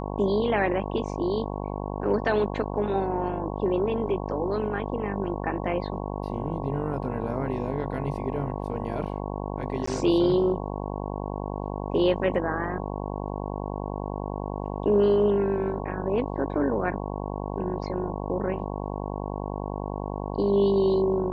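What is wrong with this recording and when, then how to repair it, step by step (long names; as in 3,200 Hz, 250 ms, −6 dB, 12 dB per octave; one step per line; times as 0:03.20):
mains buzz 50 Hz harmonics 22 −32 dBFS
0:09.86–0:09.87: drop-out 14 ms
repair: hum removal 50 Hz, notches 22
repair the gap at 0:09.86, 14 ms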